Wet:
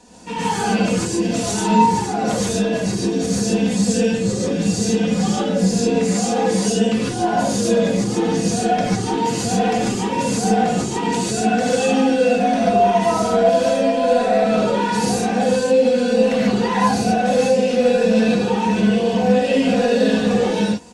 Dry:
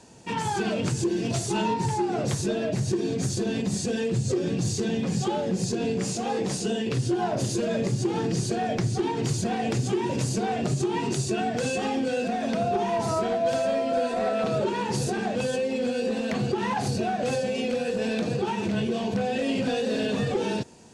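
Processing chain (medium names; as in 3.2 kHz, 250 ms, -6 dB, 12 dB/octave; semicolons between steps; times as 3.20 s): comb 4.1 ms, depth 73%; gated-style reverb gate 170 ms rising, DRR -6 dB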